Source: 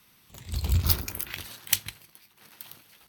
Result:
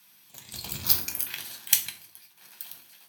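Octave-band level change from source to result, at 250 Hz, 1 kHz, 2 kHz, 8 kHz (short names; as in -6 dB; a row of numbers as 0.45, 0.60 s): -6.5, -2.0, 0.0, +4.0 dB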